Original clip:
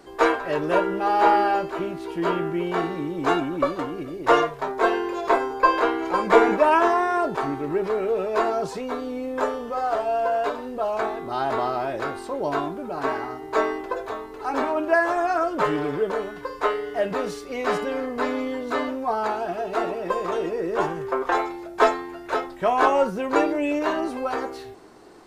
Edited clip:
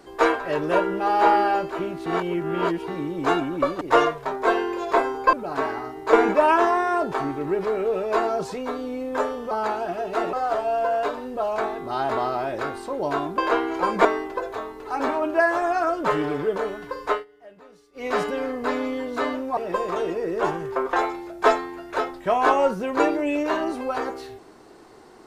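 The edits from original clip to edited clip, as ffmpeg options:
-filter_complex "[0:a]asplit=13[a][b][c][d][e][f][g][h][i][j][k][l][m];[a]atrim=end=2.062[n];[b]atrim=start=2.058:end=2.882,asetpts=PTS-STARTPTS,areverse[o];[c]atrim=start=2.878:end=3.812[p];[d]atrim=start=4.168:end=5.692[q];[e]atrim=start=12.788:end=13.592[r];[f]atrim=start=6.358:end=9.742[s];[g]atrim=start=19.108:end=19.932[t];[h]atrim=start=9.738:end=12.792[u];[i]atrim=start=5.688:end=6.362[v];[j]atrim=start=13.588:end=16.79,asetpts=PTS-STARTPTS,afade=t=out:st=3.062:d=0.14:silence=0.0749894[w];[k]atrim=start=16.79:end=17.47,asetpts=PTS-STARTPTS,volume=-22.5dB[x];[l]atrim=start=17.47:end=19.112,asetpts=PTS-STARTPTS,afade=t=in:d=0.14:silence=0.0749894[y];[m]atrim=start=19.928[z];[n][o]acrossfade=d=0.004:c1=hsin:c2=hsin[aa];[aa][p]acrossfade=d=0.004:c1=hsin:c2=hsin[ab];[ab][q]acrossfade=d=0.004:c1=hsin:c2=hsin[ac];[ac][r]acrossfade=d=0.004:c1=hsin:c2=hsin[ad];[ad][s]acrossfade=d=0.004:c1=hsin:c2=hsin[ae];[ae][t]acrossfade=d=0.004:c1=hsin:c2=hsin[af];[af][u]acrossfade=d=0.004:c1=hsin:c2=hsin[ag];[ag][v]acrossfade=d=0.004:c1=hsin:c2=hsin[ah];[w][x][y]concat=n=3:v=0:a=1[ai];[ah][ai]acrossfade=d=0.004:c1=hsin:c2=hsin[aj];[aj][z]acrossfade=d=0.004:c1=hsin:c2=hsin"

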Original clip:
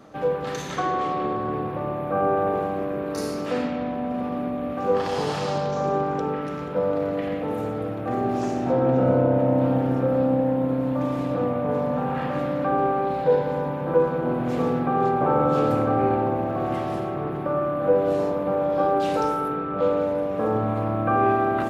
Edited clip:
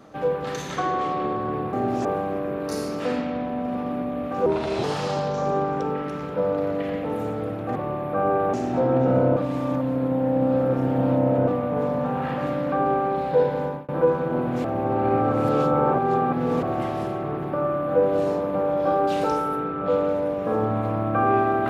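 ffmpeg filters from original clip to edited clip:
-filter_complex "[0:a]asplit=12[a][b][c][d][e][f][g][h][i][j][k][l];[a]atrim=end=1.732[m];[b]atrim=start=8.138:end=8.462[n];[c]atrim=start=2.508:end=4.924[o];[d]atrim=start=4.92:end=5.22,asetpts=PTS-STARTPTS,asetrate=35280,aresample=44100[p];[e]atrim=start=5.216:end=8.142[q];[f]atrim=start=1.728:end=2.512[r];[g]atrim=start=8.458:end=9.292[s];[h]atrim=start=9.288:end=11.402,asetpts=PTS-STARTPTS,areverse[t];[i]atrim=start=11.398:end=13.81,asetpts=PTS-STARTPTS,afade=t=out:st=2.092:d=0.32:c=qsin[u];[j]atrim=start=13.81:end=14.572,asetpts=PTS-STARTPTS,afade=t=in:d=0.004:c=hsin[v];[k]atrim=start=14.568:end=16.552,asetpts=PTS-STARTPTS,areverse[w];[l]atrim=start=16.548[x];[m][n]acrossfade=d=0.004:c1=hsin:c2=hsin[y];[y][o]acrossfade=d=0.004:c1=hsin:c2=hsin[z];[z][p]acrossfade=d=0.004:c1=hsin:c2=hsin[aa];[aa][q]acrossfade=d=0.004:c1=hsin:c2=hsin[ab];[ab][r]acrossfade=d=0.004:c1=hsin:c2=hsin[ac];[ac][s]acrossfade=d=0.004:c1=hsin:c2=hsin[ad];[ad][t]acrossfade=d=0.004:c1=hsin:c2=hsin[ae];[u][v]concat=n=2:v=0:a=1[af];[ae][af]acrossfade=d=0.004:c1=hsin:c2=hsin[ag];[ag][w]acrossfade=d=0.004:c1=hsin:c2=hsin[ah];[ah][x]acrossfade=d=0.004:c1=hsin:c2=hsin"

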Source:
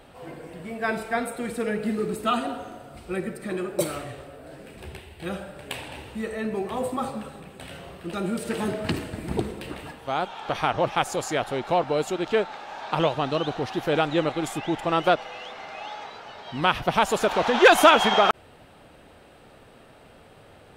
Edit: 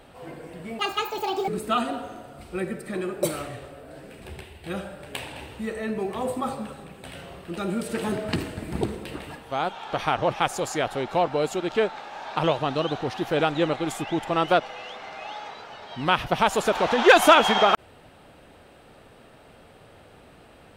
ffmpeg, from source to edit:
-filter_complex "[0:a]asplit=3[a][b][c];[a]atrim=end=0.794[d];[b]atrim=start=0.79:end=2.04,asetpts=PTS-STARTPTS,asetrate=79821,aresample=44100[e];[c]atrim=start=2.036[f];[d][e]acrossfade=d=0.004:c1=hsin:c2=hsin[g];[g][f]acrossfade=d=0.004:c1=hsin:c2=hsin"

